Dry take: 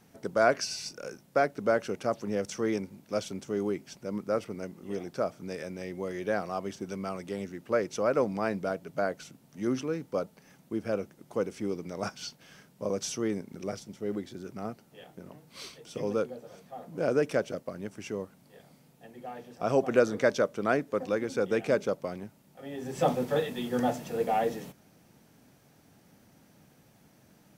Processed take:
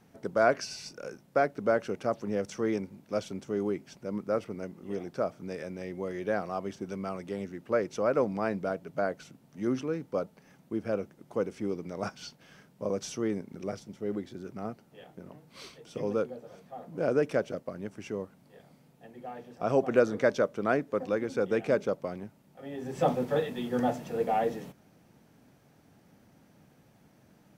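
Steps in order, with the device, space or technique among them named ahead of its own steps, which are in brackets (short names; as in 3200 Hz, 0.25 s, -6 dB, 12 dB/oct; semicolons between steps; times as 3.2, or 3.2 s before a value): behind a face mask (high shelf 3400 Hz -7 dB)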